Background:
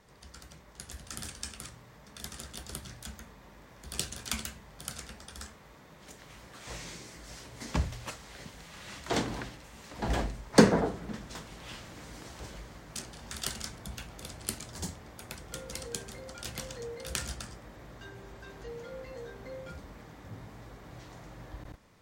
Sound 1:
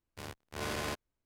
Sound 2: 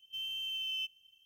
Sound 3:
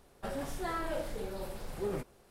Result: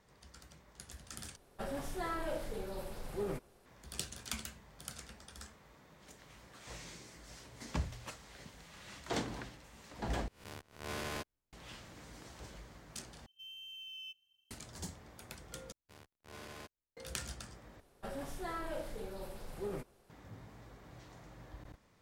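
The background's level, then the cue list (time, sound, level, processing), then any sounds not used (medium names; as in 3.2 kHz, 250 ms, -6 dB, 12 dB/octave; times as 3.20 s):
background -6.5 dB
1.36 s: replace with 3 -2.5 dB
10.28 s: replace with 1 -5.5 dB + reverse spectral sustain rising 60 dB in 0.43 s
13.26 s: replace with 2 -11 dB
15.72 s: replace with 1 -13.5 dB
17.80 s: replace with 3 -5 dB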